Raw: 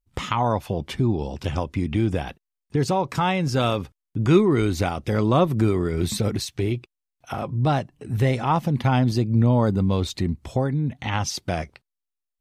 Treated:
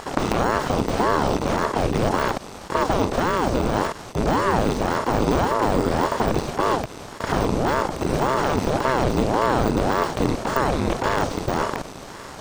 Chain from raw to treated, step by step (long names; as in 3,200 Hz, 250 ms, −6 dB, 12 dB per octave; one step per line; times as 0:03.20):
compressor on every frequency bin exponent 0.2
de-essing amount 55%
leveller curve on the samples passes 1
ring modulator whose carrier an LFO sweeps 420 Hz, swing 90%, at 1.8 Hz
level −8.5 dB